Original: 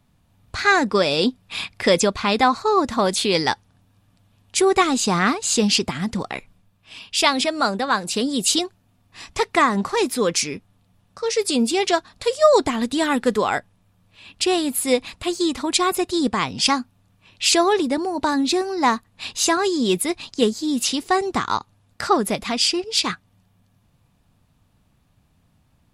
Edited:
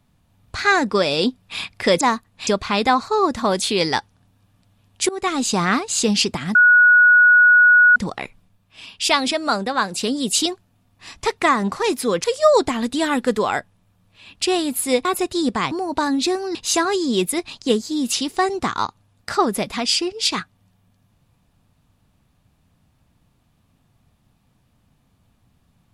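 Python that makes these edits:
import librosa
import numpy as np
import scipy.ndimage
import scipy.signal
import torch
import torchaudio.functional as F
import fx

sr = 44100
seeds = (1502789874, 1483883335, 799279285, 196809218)

y = fx.edit(x, sr, fx.fade_in_from(start_s=4.63, length_s=0.35, floor_db=-21.0),
    fx.insert_tone(at_s=6.09, length_s=1.41, hz=1460.0, db=-8.0),
    fx.cut(start_s=10.37, length_s=1.86),
    fx.cut(start_s=15.04, length_s=0.79),
    fx.cut(start_s=16.49, length_s=1.48),
    fx.move(start_s=18.81, length_s=0.46, to_s=2.01), tone=tone)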